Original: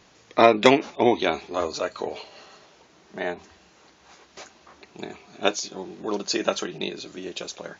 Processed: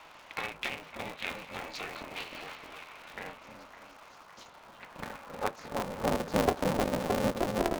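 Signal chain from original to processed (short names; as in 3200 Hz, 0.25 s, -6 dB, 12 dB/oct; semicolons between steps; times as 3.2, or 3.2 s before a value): compressor 6:1, threshold -31 dBFS, peak gain reduction 20 dB; band-pass sweep 2400 Hz -> 520 Hz, 4.13–6.36; on a send: delay with a stepping band-pass 0.309 s, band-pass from 380 Hz, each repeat 0.7 oct, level -1.5 dB; 3.48–4.8 on the sum: spectral gain 550–2900 Hz -25 dB; 3.19–4.41 band shelf 2400 Hz -9 dB; band noise 700–1300 Hz -63 dBFS; low shelf 460 Hz +9.5 dB; band-limited delay 0.559 s, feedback 67%, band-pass 1500 Hz, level -13 dB; polarity switched at an audio rate 160 Hz; gain +6.5 dB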